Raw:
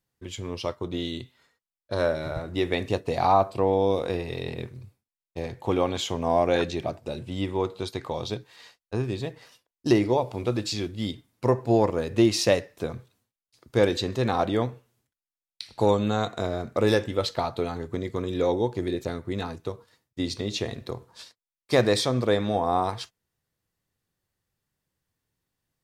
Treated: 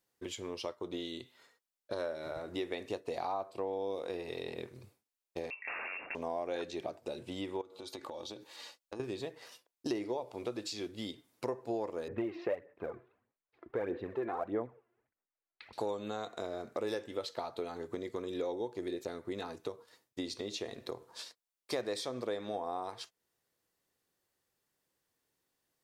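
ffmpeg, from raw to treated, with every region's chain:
-filter_complex "[0:a]asettb=1/sr,asplit=3[a][b][c];[a]atrim=end=5.504[d];[b]atrim=start=5.5:end=6.15,asetpts=PTS-STARTPTS,afade=t=in:d=0.004:c=qsin,afade=t=out:st=0.646:d=0.004:c=qsin,lowshelf=f=94:g=8.5,aeval=exprs='(mod(15.8*val(0)+1,2)-1)/15.8':c=same,lowpass=f=2.4k:t=q:w=0.5098,lowpass=f=2.4k:t=q:w=0.6013,lowpass=f=2.4k:t=q:w=0.9,lowpass=f=2.4k:t=q:w=2.563,afreqshift=-2800[e];[c]atrim=start=6.146[f];[d][e]acrossfade=d=0.004:c1=hsin:c2=qsin[g];[g][f]acrossfade=d=0.004:c1=qsin:c2=hsin,asettb=1/sr,asplit=3[h][i][j];[h]atrim=end=7.614[k];[i]atrim=start=7.61:end=9,asetpts=PTS-STARTPTS,afade=t=in:d=0.004:c=qsin,afade=t=out:st=1.386:d=0.004:c=qsin,equalizer=f=1.8k:t=o:w=0.76:g=-4,aecho=1:1:3.5:0.45,atrim=end_sample=61299,acompressor=threshold=-38dB:ratio=12:attack=3.2:release=140:knee=1:detection=peak[l];[j]atrim=start=8.996[m];[k][l]acrossfade=d=0.004:c1=hsin:c2=qsin[n];[n][m]acrossfade=d=0.004:c1=qsin:c2=hsin,asettb=1/sr,asplit=3[o][p][q];[o]atrim=end=12.084[r];[p]atrim=start=12.08:end=15.73,asetpts=PTS-STARTPTS,afade=t=in:d=0.004:c=qsin,afade=t=out:st=3.646:d=0.004:c=qsin,lowpass=f=2.1k:w=0.5412,lowpass=f=2.1k:w=1.3066,aphaser=in_gain=1:out_gain=1:delay=3:decay=0.58:speed=1.6:type=sinusoidal[s];[q]atrim=start=15.726[t];[r][s]acrossfade=d=0.004:c1=hsin:c2=qsin[u];[u][t]acrossfade=d=0.004:c1=qsin:c2=hsin,bass=f=250:g=-13,treble=f=4k:g=2,acompressor=threshold=-42dB:ratio=3,equalizer=f=330:w=0.65:g=4.5"

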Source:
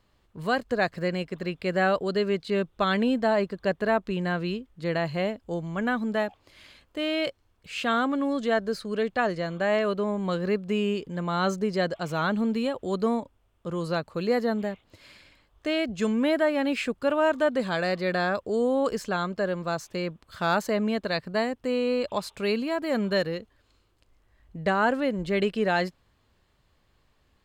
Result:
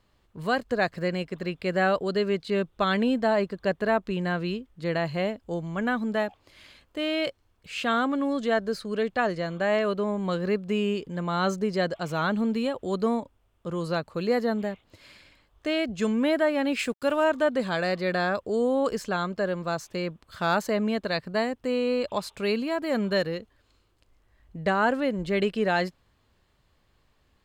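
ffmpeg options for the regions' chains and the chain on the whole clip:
-filter_complex "[0:a]asettb=1/sr,asplit=3[a][b][c];[a]atrim=end=16.794[d];[b]atrim=start=16.79:end=17.24,asetpts=PTS-STARTPTS,afade=t=in:d=0.004:c=qsin,afade=t=out:st=0.446:d=0.004:c=qsin,aemphasis=mode=production:type=cd,aeval=exprs='sgn(val(0))*max(abs(val(0))-0.00237,0)':c=same[e];[c]atrim=start=17.236[f];[d][e]acrossfade=d=0.004:c1=hsin:c2=qsin[g];[g][f]acrossfade=d=0.004:c1=qsin:c2=hsin"

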